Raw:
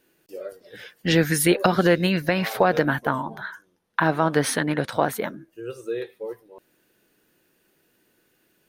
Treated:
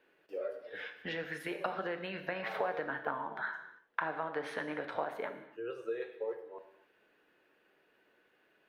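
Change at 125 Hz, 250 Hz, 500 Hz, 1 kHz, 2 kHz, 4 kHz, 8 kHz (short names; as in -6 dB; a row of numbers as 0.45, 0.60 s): -26.0 dB, -21.5 dB, -13.5 dB, -13.0 dB, -12.0 dB, -18.5 dB, under -30 dB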